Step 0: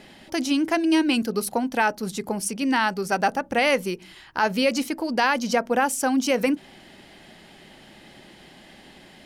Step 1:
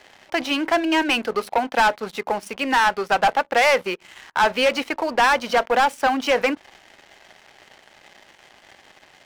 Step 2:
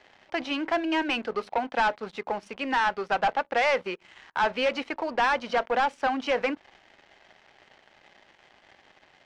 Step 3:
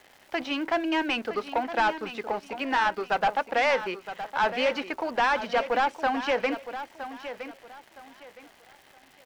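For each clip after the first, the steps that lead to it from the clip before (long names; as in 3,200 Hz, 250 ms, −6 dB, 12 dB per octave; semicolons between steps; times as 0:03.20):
three-way crossover with the lows and the highs turned down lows −20 dB, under 500 Hz, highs −24 dB, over 3,300 Hz; leveller curve on the samples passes 3
high-frequency loss of the air 110 metres; level −6 dB
surface crackle 390 per second −46 dBFS; repeating echo 965 ms, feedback 27%, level −11.5 dB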